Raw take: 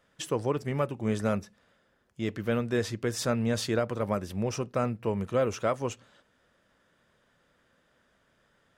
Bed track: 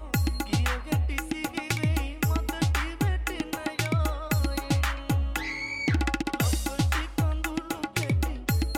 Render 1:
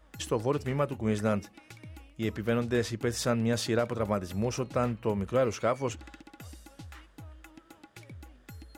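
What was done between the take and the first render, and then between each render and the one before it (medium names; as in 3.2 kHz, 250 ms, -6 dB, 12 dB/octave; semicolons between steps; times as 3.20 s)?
add bed track -21.5 dB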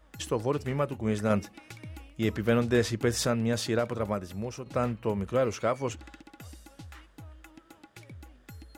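1.30–3.27 s: gain +3.5 dB; 3.96–4.66 s: fade out linear, to -9 dB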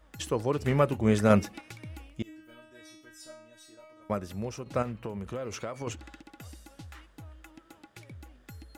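0.62–1.61 s: gain +5 dB; 2.22–4.10 s: inharmonic resonator 310 Hz, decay 0.8 s, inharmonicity 0.002; 4.82–5.87 s: compression 12:1, threshold -31 dBFS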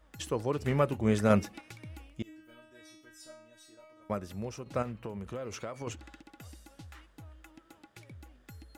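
trim -3 dB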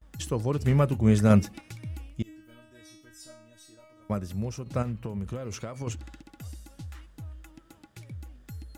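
gate with hold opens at -56 dBFS; tone controls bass +10 dB, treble +5 dB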